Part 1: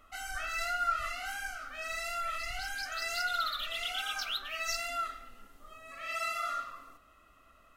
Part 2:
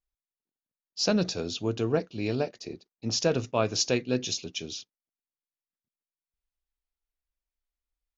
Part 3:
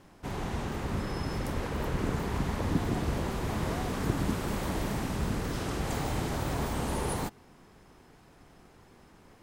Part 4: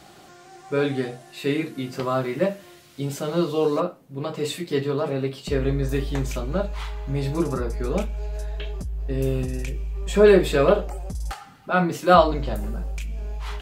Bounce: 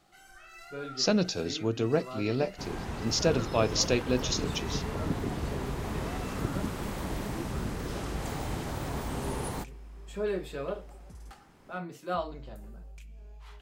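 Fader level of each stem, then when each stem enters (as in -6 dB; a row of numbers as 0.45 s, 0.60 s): -15.0 dB, -0.5 dB, -3.0 dB, -17.5 dB; 0.00 s, 0.00 s, 2.35 s, 0.00 s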